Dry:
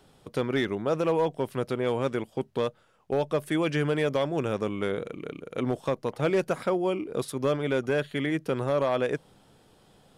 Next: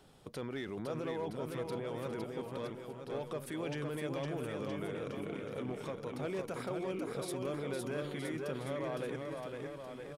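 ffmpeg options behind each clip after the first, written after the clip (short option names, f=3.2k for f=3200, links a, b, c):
-af "alimiter=level_in=5.5dB:limit=-24dB:level=0:latency=1:release=43,volume=-5.5dB,aecho=1:1:510|969|1382|1754|2089:0.631|0.398|0.251|0.158|0.1,volume=-3dB"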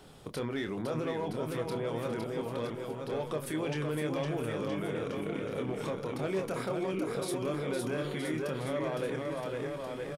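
-filter_complex "[0:a]asplit=2[a][b];[b]alimiter=level_in=12.5dB:limit=-24dB:level=0:latency=1:release=98,volume=-12.5dB,volume=2dB[c];[a][c]amix=inputs=2:normalize=0,asplit=2[d][e];[e]adelay=26,volume=-7.5dB[f];[d][f]amix=inputs=2:normalize=0"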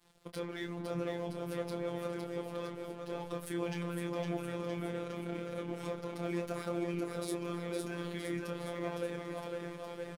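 -af "aeval=exprs='sgn(val(0))*max(abs(val(0))-0.00266,0)':c=same,afftfilt=real='hypot(re,im)*cos(PI*b)':imag='0':win_size=1024:overlap=0.75"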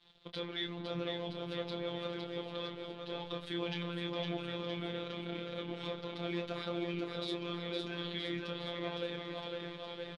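-af "lowpass=f=3.6k:t=q:w=5.3,volume=-2dB"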